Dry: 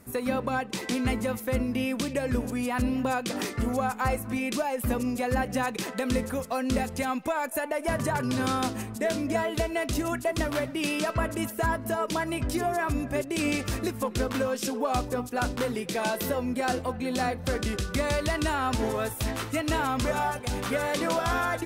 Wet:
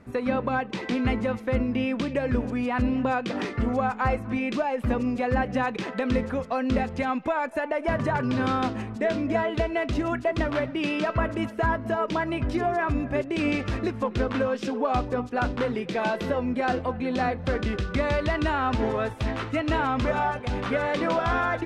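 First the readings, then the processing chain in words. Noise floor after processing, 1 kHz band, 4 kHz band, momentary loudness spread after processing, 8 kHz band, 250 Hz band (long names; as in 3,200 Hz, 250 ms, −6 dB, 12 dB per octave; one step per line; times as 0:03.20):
−37 dBFS, +2.5 dB, −2.5 dB, 3 LU, below −10 dB, +2.5 dB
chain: low-pass filter 3,000 Hz 12 dB per octave
level +2.5 dB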